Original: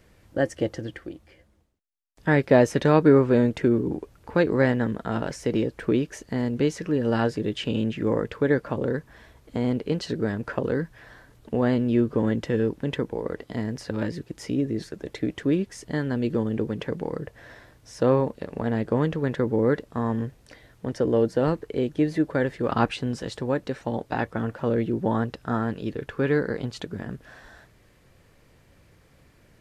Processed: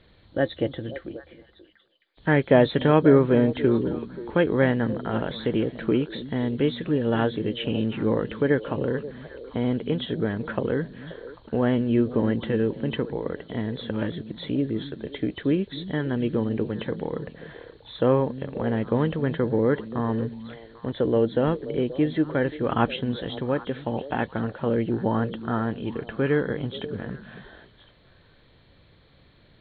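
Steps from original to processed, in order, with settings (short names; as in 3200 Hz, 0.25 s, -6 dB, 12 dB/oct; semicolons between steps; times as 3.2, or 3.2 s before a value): nonlinear frequency compression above 3000 Hz 4:1; on a send: delay with a stepping band-pass 0.265 s, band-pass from 180 Hz, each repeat 1.4 oct, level -9.5 dB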